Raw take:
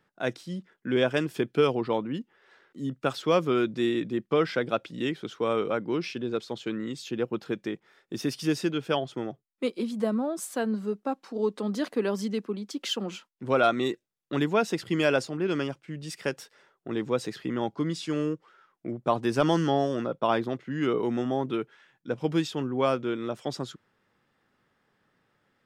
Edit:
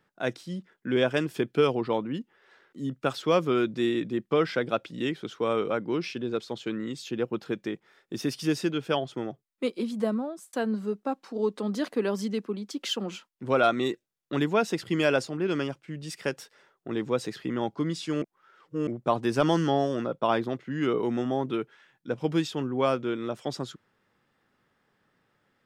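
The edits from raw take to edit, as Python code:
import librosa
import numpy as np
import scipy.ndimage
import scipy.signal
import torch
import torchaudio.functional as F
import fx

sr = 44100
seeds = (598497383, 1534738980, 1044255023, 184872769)

y = fx.edit(x, sr, fx.fade_out_span(start_s=10.1, length_s=0.43),
    fx.reverse_span(start_s=18.22, length_s=0.65), tone=tone)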